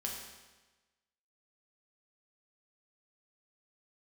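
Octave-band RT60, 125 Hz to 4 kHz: 1.2 s, 1.2 s, 1.2 s, 1.2 s, 1.2 s, 1.1 s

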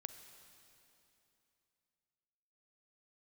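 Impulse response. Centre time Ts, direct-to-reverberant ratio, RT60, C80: 30 ms, 8.5 dB, 2.9 s, 10.0 dB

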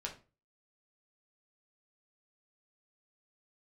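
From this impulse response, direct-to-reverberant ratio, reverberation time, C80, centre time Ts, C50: -1.0 dB, 0.35 s, 17.0 dB, 15 ms, 11.0 dB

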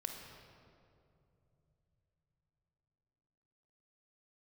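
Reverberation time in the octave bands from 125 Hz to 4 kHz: 5.2 s, 4.2 s, 3.2 s, 2.4 s, 1.8 s, 1.5 s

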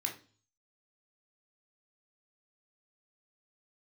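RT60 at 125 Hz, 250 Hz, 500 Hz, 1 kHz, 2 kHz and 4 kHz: 0.70 s, 0.50 s, 0.45 s, 0.35 s, 0.35 s, 0.45 s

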